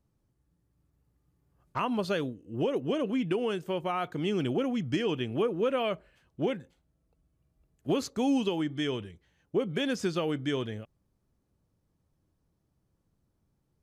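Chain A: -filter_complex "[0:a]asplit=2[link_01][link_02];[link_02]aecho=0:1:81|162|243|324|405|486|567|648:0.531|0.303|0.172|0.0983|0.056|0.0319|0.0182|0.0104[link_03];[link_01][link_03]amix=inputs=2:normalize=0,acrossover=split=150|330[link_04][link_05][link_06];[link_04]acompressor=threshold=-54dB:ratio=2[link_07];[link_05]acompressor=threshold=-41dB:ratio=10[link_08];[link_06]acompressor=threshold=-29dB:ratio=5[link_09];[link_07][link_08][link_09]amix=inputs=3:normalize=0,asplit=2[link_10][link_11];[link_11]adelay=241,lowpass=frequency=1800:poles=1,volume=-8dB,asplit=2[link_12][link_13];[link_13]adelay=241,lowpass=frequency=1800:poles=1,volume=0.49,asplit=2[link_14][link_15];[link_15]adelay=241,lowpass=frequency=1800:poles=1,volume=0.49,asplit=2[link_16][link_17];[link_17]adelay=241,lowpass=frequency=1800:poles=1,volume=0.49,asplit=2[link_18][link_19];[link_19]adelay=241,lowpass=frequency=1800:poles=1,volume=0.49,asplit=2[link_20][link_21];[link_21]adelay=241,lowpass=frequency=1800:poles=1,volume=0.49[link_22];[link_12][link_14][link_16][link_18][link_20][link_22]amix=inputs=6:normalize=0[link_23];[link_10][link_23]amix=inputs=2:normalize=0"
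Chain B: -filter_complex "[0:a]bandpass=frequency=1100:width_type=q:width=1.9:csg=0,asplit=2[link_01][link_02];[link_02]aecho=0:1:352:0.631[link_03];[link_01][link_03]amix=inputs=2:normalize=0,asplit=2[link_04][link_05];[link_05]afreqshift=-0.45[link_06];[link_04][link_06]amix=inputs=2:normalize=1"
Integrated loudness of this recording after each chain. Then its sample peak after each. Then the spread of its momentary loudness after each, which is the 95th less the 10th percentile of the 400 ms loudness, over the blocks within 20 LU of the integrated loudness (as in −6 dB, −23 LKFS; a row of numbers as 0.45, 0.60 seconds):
−33.0, −44.0 LKFS; −19.0, −27.0 dBFS; 10, 10 LU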